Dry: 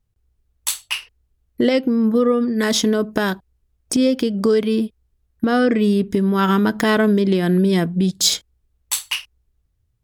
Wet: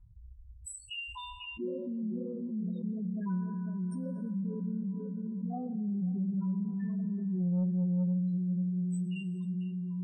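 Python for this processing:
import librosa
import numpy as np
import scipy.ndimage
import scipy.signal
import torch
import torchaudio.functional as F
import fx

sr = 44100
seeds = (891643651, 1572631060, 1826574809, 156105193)

y = fx.echo_tape(x, sr, ms=496, feedback_pct=47, wet_db=-6.0, lp_hz=1300.0, drive_db=8.0, wow_cents=11)
y = fx.spec_topn(y, sr, count=4)
y = fx.curve_eq(y, sr, hz=(150.0, 280.0, 520.0, 890.0, 2800.0), db=(0, -21, -25, -7, -20))
y = fx.env_lowpass_down(y, sr, base_hz=370.0, full_db=-26.0)
y = scipy.signal.sosfilt(scipy.signal.butter(2, 46.0, 'highpass', fs=sr, output='sos'), y)
y = fx.high_shelf(y, sr, hz=7200.0, db=-10.0)
y = fx.stiff_resonator(y, sr, f0_hz=180.0, decay_s=0.65, stiffness=0.008)
y = fx.rider(y, sr, range_db=5, speed_s=2.0)
y = fx.rev_plate(y, sr, seeds[0], rt60_s=4.9, hf_ratio=0.3, predelay_ms=0, drr_db=11.5)
y = 10.0 ** (-27.5 / 20.0) * np.tanh(y / 10.0 ** (-27.5 / 20.0))
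y = fx.env_flatten(y, sr, amount_pct=70)
y = F.gain(torch.from_numpy(y), 2.0).numpy()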